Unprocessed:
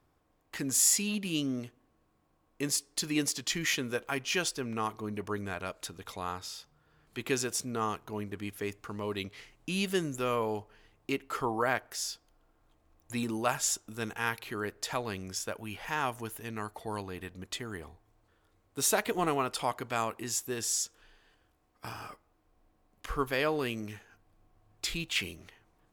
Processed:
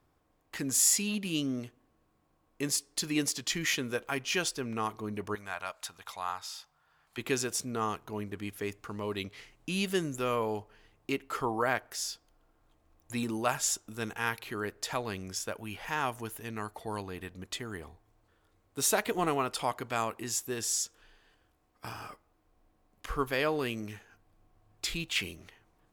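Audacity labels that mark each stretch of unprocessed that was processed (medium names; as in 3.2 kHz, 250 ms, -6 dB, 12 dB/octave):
5.350000	7.180000	resonant low shelf 560 Hz -11.5 dB, Q 1.5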